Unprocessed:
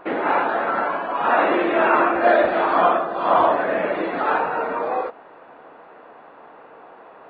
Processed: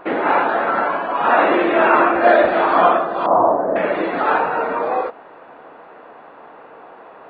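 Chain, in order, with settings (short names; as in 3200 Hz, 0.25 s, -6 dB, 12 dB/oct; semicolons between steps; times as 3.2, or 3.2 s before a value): 3.26–3.76 LPF 1000 Hz 24 dB/oct; gain +3.5 dB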